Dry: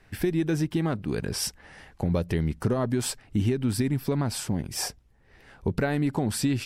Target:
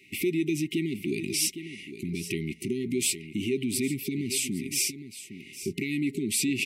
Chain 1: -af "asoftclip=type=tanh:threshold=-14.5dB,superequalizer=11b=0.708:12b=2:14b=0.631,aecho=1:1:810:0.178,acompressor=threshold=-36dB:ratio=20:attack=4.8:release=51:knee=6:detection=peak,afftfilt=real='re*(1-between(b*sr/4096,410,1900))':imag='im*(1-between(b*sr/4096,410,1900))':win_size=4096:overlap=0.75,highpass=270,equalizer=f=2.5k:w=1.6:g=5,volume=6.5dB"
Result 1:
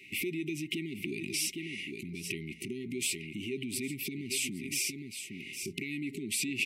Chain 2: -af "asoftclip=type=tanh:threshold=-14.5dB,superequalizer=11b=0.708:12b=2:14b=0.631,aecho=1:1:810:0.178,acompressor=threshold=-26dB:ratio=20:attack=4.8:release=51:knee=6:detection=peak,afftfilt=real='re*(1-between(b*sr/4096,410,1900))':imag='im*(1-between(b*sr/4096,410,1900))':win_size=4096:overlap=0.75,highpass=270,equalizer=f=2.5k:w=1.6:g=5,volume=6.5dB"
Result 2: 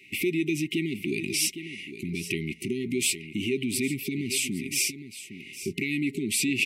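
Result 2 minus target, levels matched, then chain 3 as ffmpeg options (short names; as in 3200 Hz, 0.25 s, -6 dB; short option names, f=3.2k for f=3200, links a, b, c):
2000 Hz band +4.0 dB
-af "asoftclip=type=tanh:threshold=-14.5dB,superequalizer=11b=0.708:12b=2:14b=0.631,aecho=1:1:810:0.178,acompressor=threshold=-26dB:ratio=20:attack=4.8:release=51:knee=6:detection=peak,afftfilt=real='re*(1-between(b*sr/4096,410,1900))':imag='im*(1-between(b*sr/4096,410,1900))':win_size=4096:overlap=0.75,highpass=270,volume=6.5dB"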